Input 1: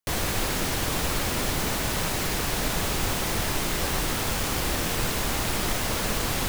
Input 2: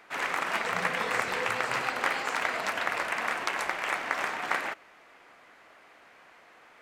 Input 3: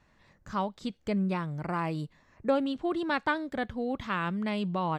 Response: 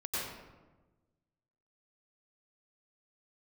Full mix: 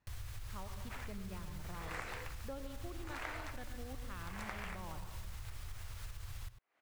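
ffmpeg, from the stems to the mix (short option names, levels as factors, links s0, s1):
-filter_complex "[0:a]firequalizer=gain_entry='entry(110,0);entry(160,-27);entry(1200,-14)':delay=0.05:min_phase=1,alimiter=level_in=1.19:limit=0.0631:level=0:latency=1:release=107,volume=0.841,volume=0.422,asplit=2[s0][s1];[s1]volume=0.126[s2];[1:a]aeval=exprs='val(0)*pow(10,-39*(0.5-0.5*cos(2*PI*0.8*n/s))/20)':c=same,adelay=800,volume=0.531[s3];[2:a]volume=0.158,asplit=2[s4][s5];[s5]volume=0.335[s6];[3:a]atrim=start_sample=2205[s7];[s2][s6]amix=inputs=2:normalize=0[s8];[s8][s7]afir=irnorm=-1:irlink=0[s9];[s0][s3][s4][s9]amix=inputs=4:normalize=0,acompressor=threshold=0.00794:ratio=3"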